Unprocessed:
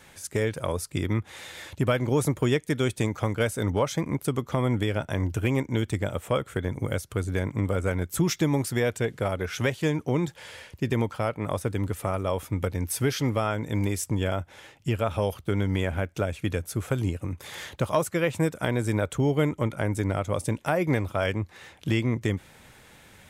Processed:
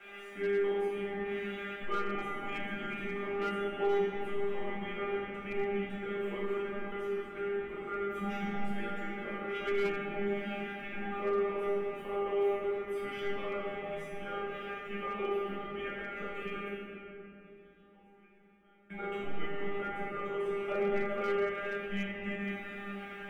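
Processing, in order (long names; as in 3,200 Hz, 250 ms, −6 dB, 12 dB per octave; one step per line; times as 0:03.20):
converter with a step at zero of −32 dBFS
0:16.62–0:18.90: gate with flip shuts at −30 dBFS, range −29 dB
three-way crossover with the lows and the highs turned down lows −22 dB, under 400 Hz, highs −17 dB, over 3,000 Hz
frequency shifter −140 Hz
high shelf with overshoot 3,600 Hz −7 dB, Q 3
notch filter 1,000 Hz, Q 11
tuned comb filter 200 Hz, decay 0.47 s, harmonics all, mix 100%
convolution reverb RT60 3.2 s, pre-delay 6 ms, DRR −5 dB
slew-rate limiting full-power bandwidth 30 Hz
level +3 dB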